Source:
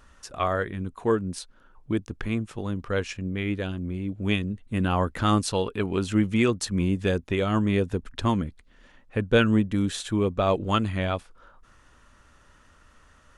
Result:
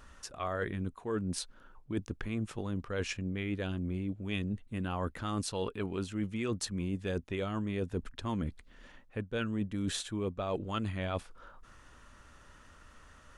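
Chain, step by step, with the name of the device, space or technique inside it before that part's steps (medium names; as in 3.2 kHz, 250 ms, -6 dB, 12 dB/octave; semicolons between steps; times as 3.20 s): compression on the reversed sound (reverse; compression 10:1, threshold -31 dBFS, peak gain reduction 17 dB; reverse)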